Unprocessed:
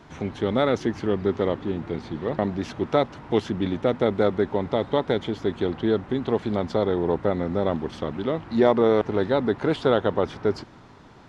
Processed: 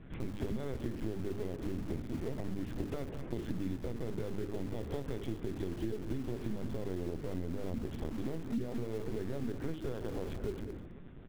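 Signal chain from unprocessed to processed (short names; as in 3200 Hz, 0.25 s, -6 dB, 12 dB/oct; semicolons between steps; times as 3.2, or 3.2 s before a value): on a send at -20 dB: reverb RT60 1.1 s, pre-delay 3 ms; on the sum: limiter -15 dBFS, peak gain reduction 10 dB; ten-band EQ 125 Hz +8 dB, 250 Hz +5 dB, 1000 Hz -12 dB; LPC vocoder at 8 kHz pitch kept; LPF 2800 Hz; notches 50/100/150/200/250/300/350/400/450 Hz; in parallel at -10.5 dB: wrapped overs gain 28.5 dB; on the sum: echo 0.206 s -15.5 dB; compressor 4:1, threshold -26 dBFS, peak gain reduction 10.5 dB; gain -7 dB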